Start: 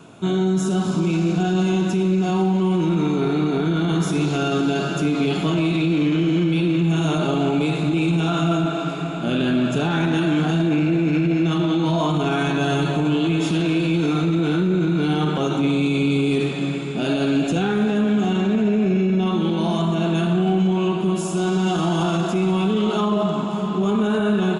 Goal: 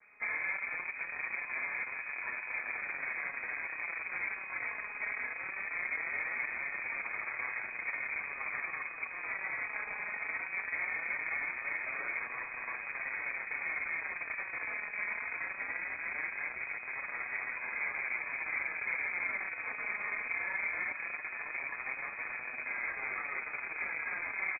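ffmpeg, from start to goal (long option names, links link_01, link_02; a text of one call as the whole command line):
ffmpeg -i in.wav -filter_complex "[0:a]adynamicequalizer=threshold=0.0126:dfrequency=480:dqfactor=2.3:tfrequency=480:tqfactor=2.3:attack=5:release=100:ratio=0.375:range=2:mode=boostabove:tftype=bell,alimiter=limit=-17dB:level=0:latency=1:release=112,areverse,acompressor=mode=upward:threshold=-37dB:ratio=2.5,areverse,asplit=3[link_01][link_02][link_03];[link_02]asetrate=55563,aresample=44100,atempo=0.793701,volume=-14dB[link_04];[link_03]asetrate=88200,aresample=44100,atempo=0.5,volume=-1dB[link_05];[link_01][link_04][link_05]amix=inputs=3:normalize=0,afftfilt=real='hypot(re,im)*cos(2*PI*random(0))':imag='hypot(re,im)*sin(2*PI*random(1))':win_size=512:overlap=0.75,acrusher=bits=5:dc=4:mix=0:aa=0.000001,flanger=delay=4.8:depth=3.2:regen=-9:speed=0.2:shape=sinusoidal,asplit=6[link_06][link_07][link_08][link_09][link_10][link_11];[link_07]adelay=356,afreqshift=-150,volume=-20dB[link_12];[link_08]adelay=712,afreqshift=-300,volume=-24.2dB[link_13];[link_09]adelay=1068,afreqshift=-450,volume=-28.3dB[link_14];[link_10]adelay=1424,afreqshift=-600,volume=-32.5dB[link_15];[link_11]adelay=1780,afreqshift=-750,volume=-36.6dB[link_16];[link_06][link_12][link_13][link_14][link_15][link_16]amix=inputs=6:normalize=0,lowpass=frequency=2100:width_type=q:width=0.5098,lowpass=frequency=2100:width_type=q:width=0.6013,lowpass=frequency=2100:width_type=q:width=0.9,lowpass=frequency=2100:width_type=q:width=2.563,afreqshift=-2500,volume=-7.5dB" out.wav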